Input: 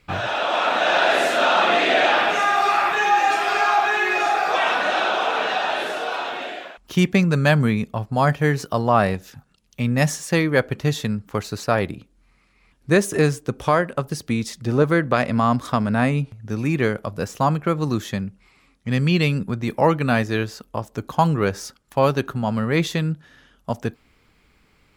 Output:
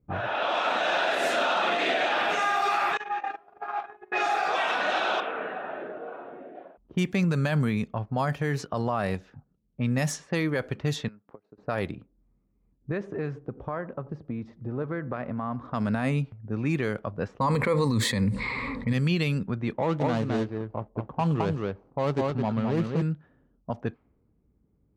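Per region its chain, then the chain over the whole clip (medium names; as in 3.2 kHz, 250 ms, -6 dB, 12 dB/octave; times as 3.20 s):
2.97–4.12 s: gate -18 dBFS, range -27 dB + treble shelf 9.4 kHz +10 dB + compression 4:1, threshold -22 dBFS
5.20–6.55 s: low-pass 2.3 kHz + peaking EQ 880 Hz -10.5 dB 0.87 oct
11.08–11.58 s: frequency weighting A + compression 10:1, threshold -41 dBFS + transient shaper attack +9 dB, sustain -11 dB
12.91–15.70 s: low-pass 6.8 kHz + compression 3:1, threshold -25 dBFS + filtered feedback delay 91 ms, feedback 42%, low-pass 1.8 kHz, level -18.5 dB
17.40–18.93 s: rippled EQ curve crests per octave 0.97, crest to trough 13 dB + level flattener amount 70%
19.73–23.02 s: median filter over 25 samples + distance through air 59 m + delay 214 ms -5 dB
whole clip: level-controlled noise filter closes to 320 Hz, open at -15.5 dBFS; high-pass 43 Hz; peak limiter -12 dBFS; trim -4.5 dB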